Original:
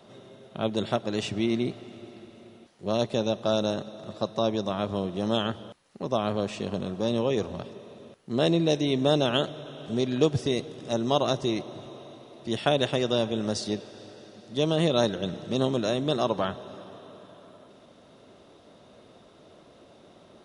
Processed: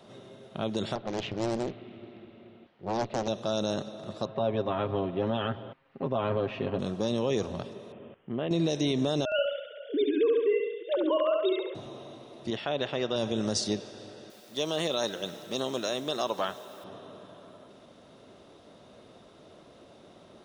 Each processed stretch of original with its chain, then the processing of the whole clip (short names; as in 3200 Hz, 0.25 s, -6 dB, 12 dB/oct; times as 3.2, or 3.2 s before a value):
0.95–3.28 LPF 3300 Hz 24 dB/oct + tube stage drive 18 dB, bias 0.5 + Doppler distortion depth 0.91 ms
4.25–6.79 LPF 2800 Hz 24 dB/oct + comb 7.5 ms, depth 64%
7.92–8.51 compressor 2.5:1, threshold -30 dBFS + steep low-pass 3300 Hz 96 dB/oct
9.25–11.75 sine-wave speech + feedback echo 69 ms, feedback 57%, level -5 dB
12.5–13.16 LPF 3000 Hz + low shelf 350 Hz -8 dB
14.3–16.84 HPF 170 Hz 6 dB/oct + low shelf 320 Hz -11 dB + requantised 10-bit, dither triangular
whole clip: limiter -18 dBFS; dynamic EQ 6000 Hz, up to +5 dB, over -55 dBFS, Q 1.6